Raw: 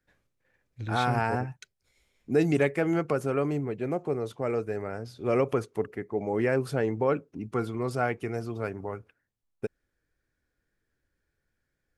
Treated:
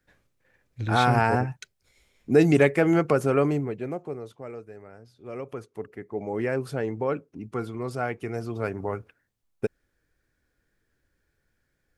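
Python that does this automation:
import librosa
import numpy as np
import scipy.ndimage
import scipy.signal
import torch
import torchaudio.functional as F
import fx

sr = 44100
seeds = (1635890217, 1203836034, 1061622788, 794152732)

y = fx.gain(x, sr, db=fx.line((3.44, 5.5), (3.96, -3.0), (4.69, -12.0), (5.32, -12.0), (6.18, -1.5), (8.06, -1.5), (8.91, 5.5)))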